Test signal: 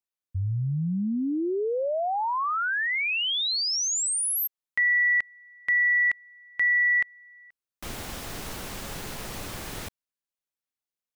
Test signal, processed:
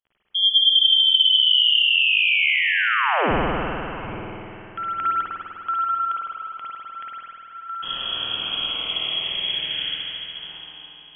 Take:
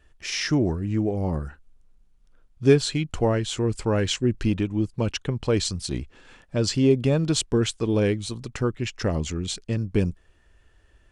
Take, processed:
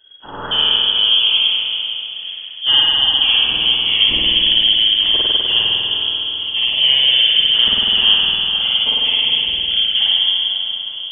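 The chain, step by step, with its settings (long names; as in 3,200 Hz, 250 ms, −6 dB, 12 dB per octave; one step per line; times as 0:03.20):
feedback delay that plays each chunk backwards 460 ms, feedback 46%, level −11 dB
low-shelf EQ 300 Hz +5.5 dB
in parallel at −9 dB: wrap-around overflow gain 11.5 dB
on the sum: auto-filter notch saw up 0.4 Hz 910–2,600 Hz
surface crackle 27 per second −43 dBFS
voice inversion scrambler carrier 3,300 Hz
on a send: tape delay 209 ms, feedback 78%, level −20 dB, low-pass 2,400 Hz
on the sum: spring reverb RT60 2.8 s, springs 50 ms, chirp 35 ms, DRR −7 dB
level −3 dB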